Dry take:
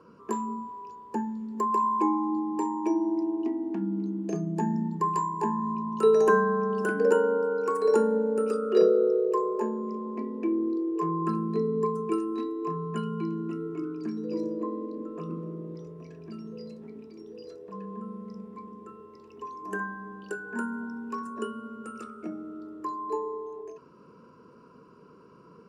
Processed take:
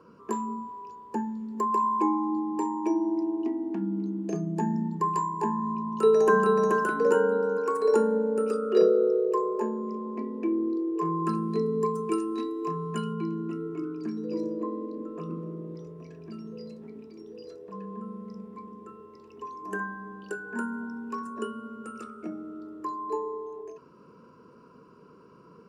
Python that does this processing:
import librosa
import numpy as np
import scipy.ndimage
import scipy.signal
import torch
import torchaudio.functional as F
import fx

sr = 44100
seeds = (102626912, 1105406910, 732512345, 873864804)

y = fx.echo_throw(x, sr, start_s=5.9, length_s=0.81, ms=430, feedback_pct=30, wet_db=-2.5)
y = fx.high_shelf(y, sr, hz=3100.0, db=8.5, at=(11.05, 13.13))